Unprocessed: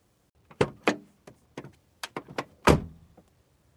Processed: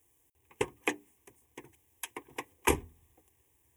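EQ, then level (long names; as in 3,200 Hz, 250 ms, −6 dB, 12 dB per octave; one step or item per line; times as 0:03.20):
high-shelf EQ 3,600 Hz +12 dB
high-shelf EQ 8,200 Hz +4 dB
phaser with its sweep stopped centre 910 Hz, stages 8
−6.0 dB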